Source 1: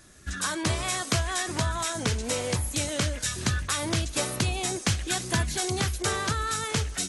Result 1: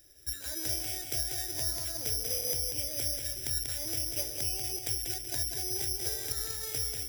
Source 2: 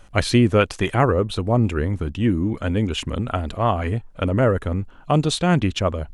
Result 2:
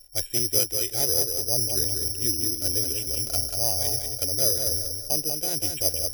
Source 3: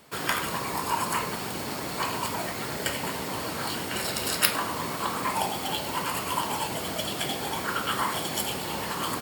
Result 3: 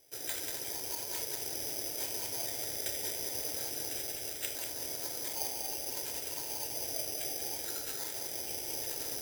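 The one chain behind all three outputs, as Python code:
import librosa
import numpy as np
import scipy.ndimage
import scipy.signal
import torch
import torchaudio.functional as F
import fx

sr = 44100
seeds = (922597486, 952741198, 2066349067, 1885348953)

p1 = fx.rider(x, sr, range_db=3, speed_s=0.5)
p2 = fx.fixed_phaser(p1, sr, hz=470.0, stages=4)
p3 = p2 + fx.echo_feedback(p2, sr, ms=190, feedback_pct=38, wet_db=-5.0, dry=0)
p4 = (np.kron(scipy.signal.resample_poly(p3, 1, 8), np.eye(8)[0]) * 8)[:len(p3)]
y = p4 * librosa.db_to_amplitude(-11.5)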